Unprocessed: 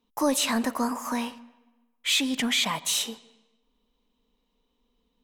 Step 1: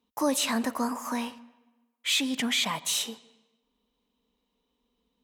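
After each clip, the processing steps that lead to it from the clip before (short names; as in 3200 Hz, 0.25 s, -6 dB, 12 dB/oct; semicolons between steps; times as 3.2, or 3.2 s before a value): HPF 52 Hz; gain -2 dB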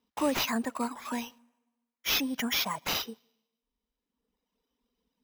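reverb removal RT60 1.5 s; sample-and-hold 5×; gain -1.5 dB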